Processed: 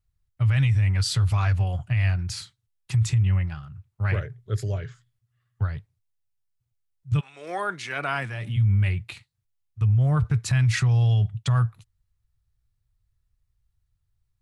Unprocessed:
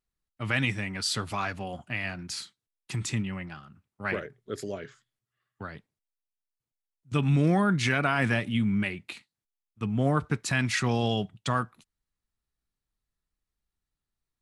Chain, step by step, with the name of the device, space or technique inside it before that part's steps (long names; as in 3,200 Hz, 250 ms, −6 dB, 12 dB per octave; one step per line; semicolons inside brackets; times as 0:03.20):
car stereo with a boomy subwoofer (low shelf with overshoot 160 Hz +13.5 dB, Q 3; brickwall limiter −16 dBFS, peak gain reduction 11 dB)
0:07.19–0:08.56: high-pass filter 550 Hz → 140 Hz 24 dB per octave
level +1 dB